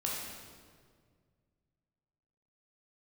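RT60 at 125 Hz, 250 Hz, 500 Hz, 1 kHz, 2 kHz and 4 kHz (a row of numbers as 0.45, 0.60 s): 2.8, 2.3, 2.1, 1.7, 1.5, 1.3 s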